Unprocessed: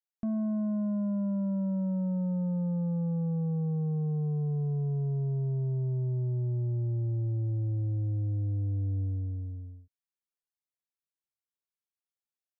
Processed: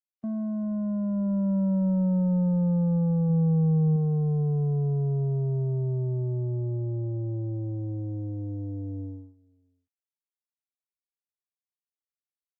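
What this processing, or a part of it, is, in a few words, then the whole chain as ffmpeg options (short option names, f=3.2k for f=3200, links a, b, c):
video call: -filter_complex "[0:a]asettb=1/sr,asplit=3[a][b][c];[a]atrim=end=3.294[d];[b]atrim=start=3.29:end=3.96,asetpts=PTS-STARTPTS,afade=t=in:d=0.004:c=qsin,afade=t=out:st=0.666:d=0.004:c=qsin,equalizer=f=140:t=o:w=0.35:g=5[e];[c]atrim=start=3.956[f];[d][e]acrossfade=d=0.004:c1=hsin:c2=qsin[g];[g][f]acrossfade=d=0.004:c1=qsin:c2=hsin,highpass=f=140:w=0.5412,highpass=f=140:w=1.3066,dynaudnorm=f=520:g=5:m=7dB,agate=range=-21dB:threshold=-35dB:ratio=16:detection=peak" -ar 48000 -c:a libopus -b:a 24k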